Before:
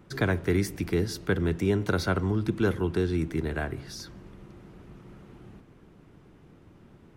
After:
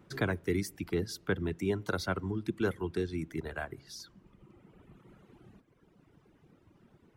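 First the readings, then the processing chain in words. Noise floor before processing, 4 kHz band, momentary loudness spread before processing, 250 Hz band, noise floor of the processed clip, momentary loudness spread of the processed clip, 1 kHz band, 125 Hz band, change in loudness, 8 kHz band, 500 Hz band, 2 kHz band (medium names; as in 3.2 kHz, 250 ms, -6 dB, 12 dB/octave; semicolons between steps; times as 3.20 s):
-55 dBFS, -5.0 dB, 9 LU, -7.0 dB, -66 dBFS, 10 LU, -5.0 dB, -8.5 dB, -6.5 dB, -4.5 dB, -5.5 dB, -5.0 dB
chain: reverb removal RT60 1.8 s; bass shelf 62 Hz -7.5 dB; trim -4 dB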